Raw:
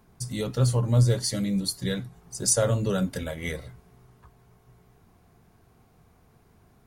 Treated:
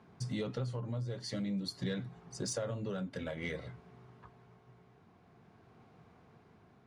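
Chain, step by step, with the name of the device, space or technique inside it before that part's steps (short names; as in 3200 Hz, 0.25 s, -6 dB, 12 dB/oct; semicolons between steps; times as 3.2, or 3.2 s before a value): AM radio (BPF 120–3700 Hz; compressor 5:1, threshold -33 dBFS, peak gain reduction 14 dB; soft clip -25.5 dBFS, distortion -23 dB; tremolo 0.5 Hz, depth 30%); gain +1 dB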